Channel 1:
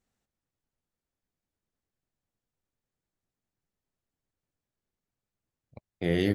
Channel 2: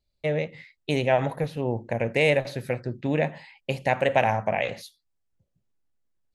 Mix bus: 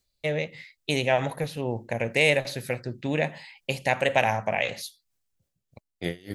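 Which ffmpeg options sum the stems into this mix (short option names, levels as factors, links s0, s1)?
-filter_complex "[0:a]aeval=exprs='val(0)*pow(10,-28*(0.5-0.5*cos(2*PI*3.3*n/s))/20)':c=same,volume=0.944[s0];[1:a]volume=0.75,afade=t=out:st=5.22:d=0.56:silence=0.334965[s1];[s0][s1]amix=inputs=2:normalize=0,highshelf=f=2600:g=11.5"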